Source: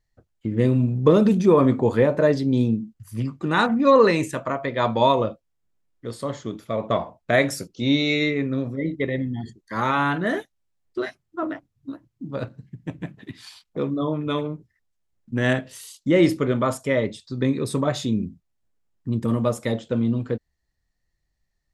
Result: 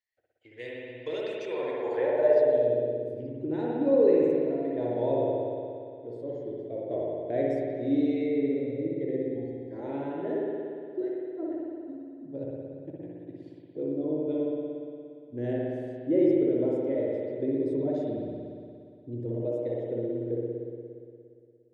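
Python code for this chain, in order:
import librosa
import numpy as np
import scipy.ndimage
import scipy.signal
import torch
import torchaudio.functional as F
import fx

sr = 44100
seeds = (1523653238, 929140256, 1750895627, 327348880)

y = fx.fixed_phaser(x, sr, hz=490.0, stages=4)
y = fx.rev_spring(y, sr, rt60_s=2.4, pass_ms=(58,), chirp_ms=75, drr_db=-4.0)
y = fx.filter_sweep_bandpass(y, sr, from_hz=2100.0, to_hz=280.0, start_s=1.47, end_s=3.56, q=1.5)
y = F.gain(torch.from_numpy(y), -2.0).numpy()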